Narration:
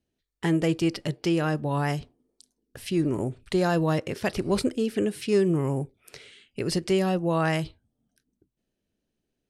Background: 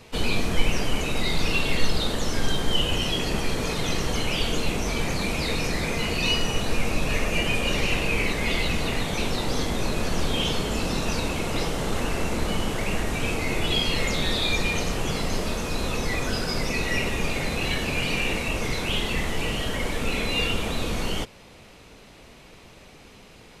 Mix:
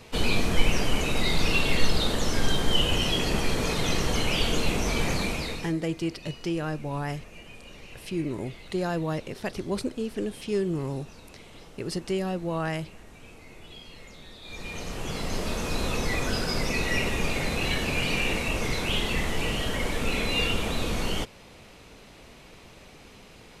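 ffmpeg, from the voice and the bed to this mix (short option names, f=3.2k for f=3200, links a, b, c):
-filter_complex "[0:a]adelay=5200,volume=-5dB[a];[1:a]volume=21dB,afade=t=out:st=5.13:d=0.62:silence=0.0794328,afade=t=in:st=14.42:d=1.28:silence=0.0891251[b];[a][b]amix=inputs=2:normalize=0"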